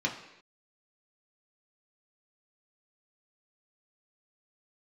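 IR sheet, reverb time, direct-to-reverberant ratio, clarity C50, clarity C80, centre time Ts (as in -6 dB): not exponential, -1.5 dB, 8.5 dB, 11.0 dB, 22 ms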